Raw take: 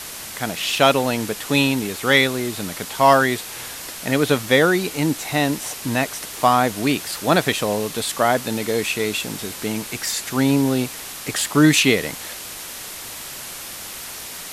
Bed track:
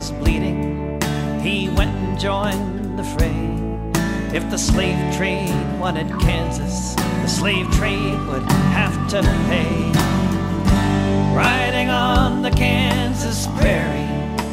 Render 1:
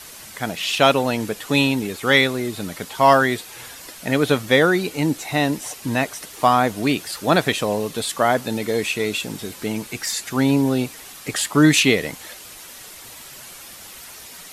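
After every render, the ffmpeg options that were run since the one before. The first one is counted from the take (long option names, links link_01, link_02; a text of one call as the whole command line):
ffmpeg -i in.wav -af "afftdn=noise_reduction=8:noise_floor=-34" out.wav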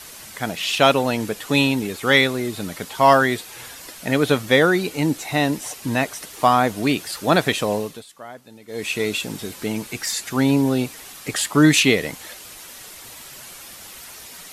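ffmpeg -i in.wav -filter_complex "[0:a]asplit=3[link_01][link_02][link_03];[link_01]atrim=end=8.04,asetpts=PTS-STARTPTS,afade=type=out:start_time=7.76:duration=0.28:silence=0.1[link_04];[link_02]atrim=start=8.04:end=8.67,asetpts=PTS-STARTPTS,volume=-20dB[link_05];[link_03]atrim=start=8.67,asetpts=PTS-STARTPTS,afade=type=in:duration=0.28:silence=0.1[link_06];[link_04][link_05][link_06]concat=n=3:v=0:a=1" out.wav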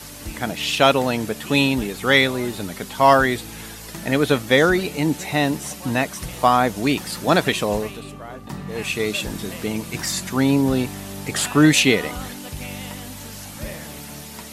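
ffmpeg -i in.wav -i bed.wav -filter_complex "[1:a]volume=-17dB[link_01];[0:a][link_01]amix=inputs=2:normalize=0" out.wav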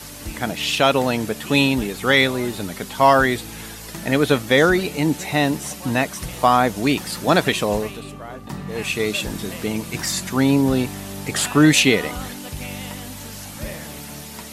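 ffmpeg -i in.wav -af "volume=1dB,alimiter=limit=-3dB:level=0:latency=1" out.wav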